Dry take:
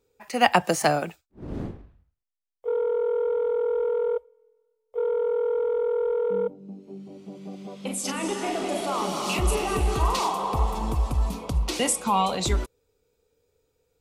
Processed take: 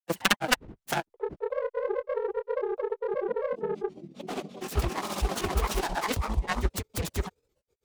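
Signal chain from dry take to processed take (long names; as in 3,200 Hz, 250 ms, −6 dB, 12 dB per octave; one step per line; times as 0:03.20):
phase distortion by the signal itself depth 0.88 ms
time stretch by overlap-add 0.56×, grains 45 ms
granular cloud 100 ms, grains 15 per second, spray 532 ms, pitch spread up and down by 3 semitones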